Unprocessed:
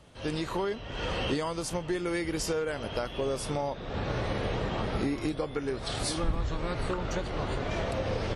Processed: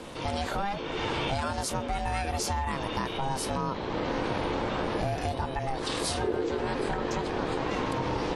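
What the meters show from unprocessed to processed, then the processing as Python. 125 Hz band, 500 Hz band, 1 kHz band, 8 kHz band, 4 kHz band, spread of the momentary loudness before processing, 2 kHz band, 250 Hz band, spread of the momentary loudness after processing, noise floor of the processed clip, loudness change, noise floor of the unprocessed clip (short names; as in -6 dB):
0.0 dB, +0.5 dB, +6.0 dB, +2.0 dB, +1.5 dB, 3 LU, +2.5 dB, +0.5 dB, 2 LU, -35 dBFS, +1.5 dB, -41 dBFS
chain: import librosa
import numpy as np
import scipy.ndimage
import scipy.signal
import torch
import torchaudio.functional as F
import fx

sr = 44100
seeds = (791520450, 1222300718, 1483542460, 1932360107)

y = x * np.sin(2.0 * np.pi * 400.0 * np.arange(len(x)) / sr)
y = fx.env_flatten(y, sr, amount_pct=50)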